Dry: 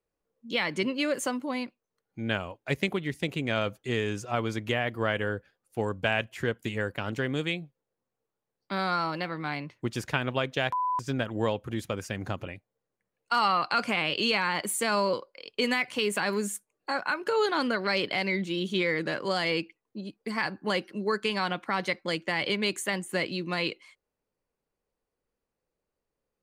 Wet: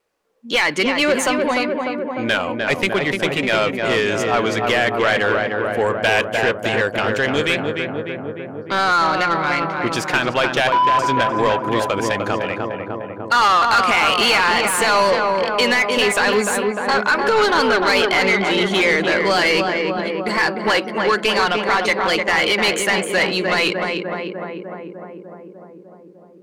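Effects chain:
feedback echo with a low-pass in the loop 300 ms, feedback 75%, low-pass 1,600 Hz, level −5 dB
mid-hump overdrive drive 20 dB, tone 4,800 Hz, clips at −10 dBFS
pitch vibrato 2.4 Hz 27 cents
level +3.5 dB

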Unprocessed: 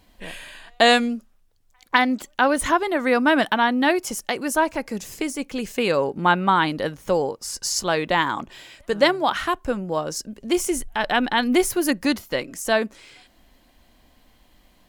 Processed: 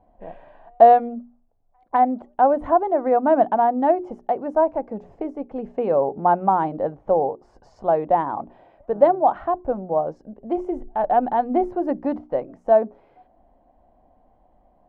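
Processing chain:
low-pass with resonance 730 Hz, resonance Q 3.9
mains-hum notches 60/120/180/240/300/360/420 Hz
level −3.5 dB

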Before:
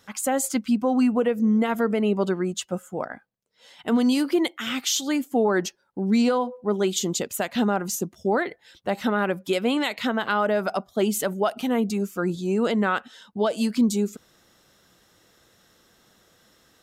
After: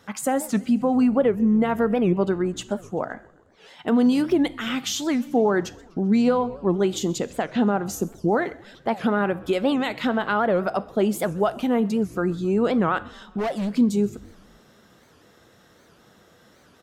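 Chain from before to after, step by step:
high-pass filter 58 Hz
high-shelf EQ 2,600 Hz −10 dB
in parallel at +2 dB: downward compressor, threshold −35 dBFS, peak gain reduction 17.5 dB
0:07.18–0:07.86: on the sum: high-frequency loss of the air 87 metres
0:13.38–0:13.78: hard clipping −23 dBFS, distortion −21 dB
echo with shifted repeats 130 ms, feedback 59%, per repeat −62 Hz, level −23.5 dB
coupled-rooms reverb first 0.54 s, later 3 s, from −22 dB, DRR 14.5 dB
wow of a warped record 78 rpm, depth 250 cents

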